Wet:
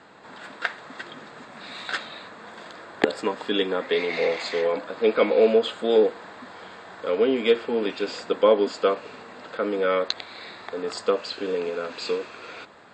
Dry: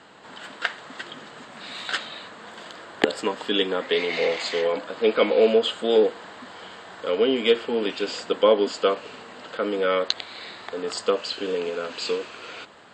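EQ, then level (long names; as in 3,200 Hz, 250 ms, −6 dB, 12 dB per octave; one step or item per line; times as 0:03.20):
high-shelf EQ 5,800 Hz −8 dB
notch filter 3,000 Hz, Q 7.2
0.0 dB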